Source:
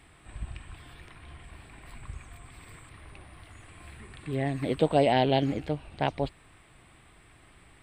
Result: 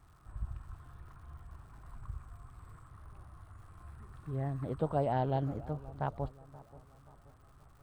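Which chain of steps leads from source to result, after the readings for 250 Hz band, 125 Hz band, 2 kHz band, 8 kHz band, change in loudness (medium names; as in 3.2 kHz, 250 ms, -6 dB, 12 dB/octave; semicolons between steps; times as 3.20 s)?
-9.5 dB, -3.0 dB, -14.5 dB, under -15 dB, -9.0 dB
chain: FFT filter 120 Hz 0 dB, 280 Hz -10 dB, 730 Hz -7 dB, 1.3 kHz 0 dB, 2.2 kHz -23 dB, 7 kHz -18 dB, 11 kHz -12 dB; crackle 210 per s -57 dBFS; on a send: feedback echo behind a low-pass 530 ms, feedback 44%, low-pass 1 kHz, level -18 dB; on the sum: trim -1.5 dB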